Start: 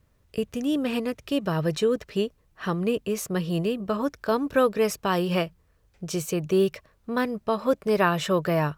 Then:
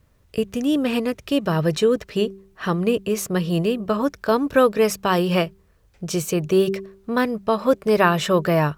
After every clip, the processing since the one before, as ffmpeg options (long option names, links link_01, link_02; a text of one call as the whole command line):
ffmpeg -i in.wav -af "bandreject=frequency=194.2:width_type=h:width=4,bandreject=frequency=388.4:width_type=h:width=4,volume=5dB" out.wav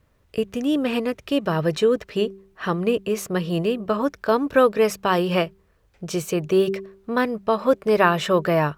ffmpeg -i in.wav -af "bass=frequency=250:gain=-4,treble=frequency=4000:gain=-5" out.wav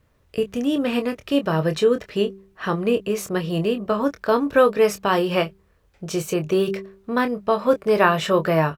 ffmpeg -i in.wav -filter_complex "[0:a]asplit=2[link_01][link_02];[link_02]adelay=25,volume=-8.5dB[link_03];[link_01][link_03]amix=inputs=2:normalize=0" out.wav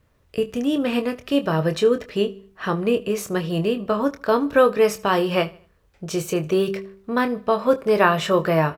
ffmpeg -i in.wav -af "aecho=1:1:77|154|231:0.0841|0.0311|0.0115" out.wav